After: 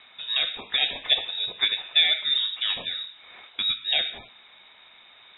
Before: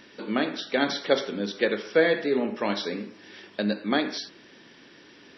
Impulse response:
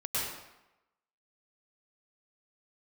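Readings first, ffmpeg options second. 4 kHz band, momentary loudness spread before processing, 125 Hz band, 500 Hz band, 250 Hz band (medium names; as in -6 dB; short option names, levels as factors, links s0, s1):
+13.0 dB, 14 LU, under -15 dB, -19.5 dB, under -20 dB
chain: -af "lowpass=f=3400:t=q:w=0.5098,lowpass=f=3400:t=q:w=0.6013,lowpass=f=3400:t=q:w=0.9,lowpass=f=3400:t=q:w=2.563,afreqshift=-4000"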